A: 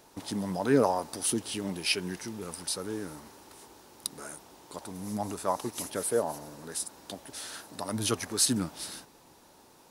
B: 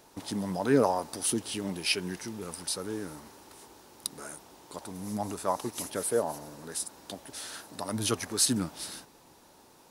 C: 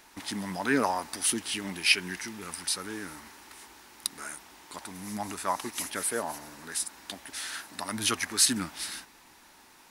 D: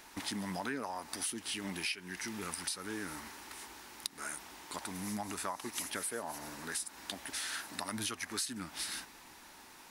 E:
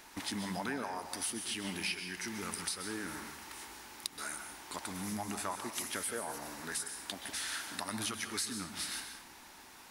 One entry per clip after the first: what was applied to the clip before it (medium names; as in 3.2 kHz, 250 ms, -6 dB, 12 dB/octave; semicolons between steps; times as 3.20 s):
no audible change
graphic EQ 125/500/2000 Hz -11/-10/+8 dB; trim +2.5 dB
compression 8:1, threshold -36 dBFS, peak gain reduction 19 dB; trim +1 dB
plate-style reverb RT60 0.54 s, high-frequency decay 0.95×, pre-delay 115 ms, DRR 7 dB